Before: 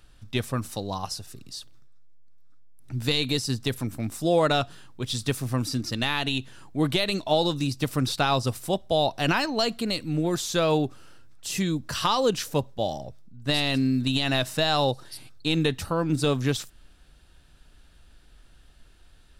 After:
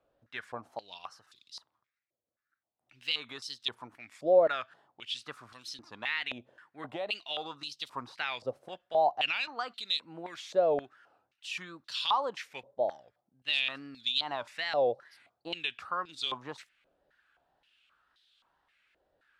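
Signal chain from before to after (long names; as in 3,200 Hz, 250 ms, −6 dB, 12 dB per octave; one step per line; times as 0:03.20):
tape wow and flutter 140 cents
band-pass on a step sequencer 3.8 Hz 570–3,600 Hz
level +2 dB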